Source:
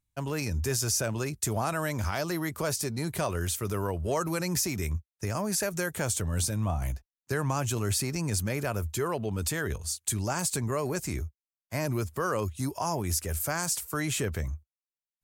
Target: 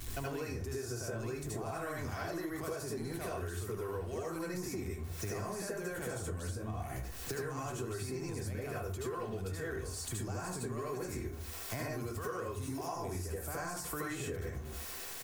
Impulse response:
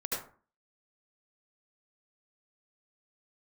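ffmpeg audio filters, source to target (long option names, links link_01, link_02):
-filter_complex "[0:a]aeval=exprs='val(0)+0.5*0.00944*sgn(val(0))':channel_layout=same,acrossover=split=81|1600[link_01][link_02][link_03];[link_01]acompressor=threshold=-39dB:ratio=4[link_04];[link_02]acompressor=threshold=-31dB:ratio=4[link_05];[link_03]acompressor=threshold=-41dB:ratio=4[link_06];[link_04][link_05][link_06]amix=inputs=3:normalize=0,asplit=2[link_07][link_08];[link_08]alimiter=level_in=6.5dB:limit=-24dB:level=0:latency=1,volume=-6.5dB,volume=1dB[link_09];[link_07][link_09]amix=inputs=2:normalize=0,aecho=1:1:2.7:0.34[link_10];[1:a]atrim=start_sample=2205[link_11];[link_10][link_11]afir=irnorm=-1:irlink=0,acompressor=threshold=-35dB:ratio=10,volume=-1dB"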